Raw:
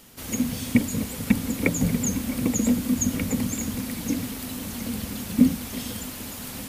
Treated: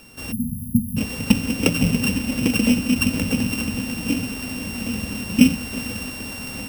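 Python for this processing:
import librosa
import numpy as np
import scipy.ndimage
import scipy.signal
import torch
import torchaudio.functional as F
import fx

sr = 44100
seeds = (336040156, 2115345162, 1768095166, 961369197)

y = np.r_[np.sort(x[:len(x) // 16 * 16].reshape(-1, 16), axis=1).ravel(), x[len(x) // 16 * 16:]]
y = fx.spec_erase(y, sr, start_s=0.32, length_s=0.65, low_hz=250.0, high_hz=10000.0)
y = F.gain(torch.from_numpy(y), 4.0).numpy()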